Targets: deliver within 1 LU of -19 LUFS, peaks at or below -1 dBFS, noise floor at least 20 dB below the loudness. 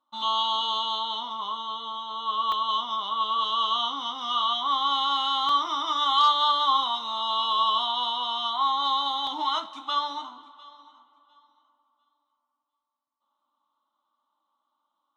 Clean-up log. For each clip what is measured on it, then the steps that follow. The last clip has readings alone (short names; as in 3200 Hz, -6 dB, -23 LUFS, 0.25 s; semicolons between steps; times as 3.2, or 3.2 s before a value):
dropouts 3; longest dropout 1.9 ms; loudness -25.0 LUFS; peak -10.0 dBFS; loudness target -19.0 LUFS
-> interpolate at 2.52/5.49/9.27, 1.9 ms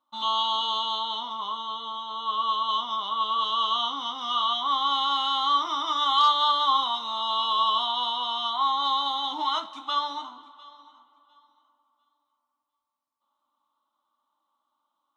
dropouts 0; loudness -25.0 LUFS; peak -10.0 dBFS; loudness target -19.0 LUFS
-> gain +6 dB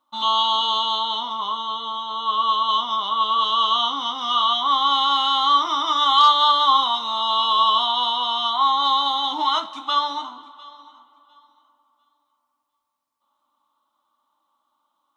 loudness -19.0 LUFS; peak -4.0 dBFS; noise floor -75 dBFS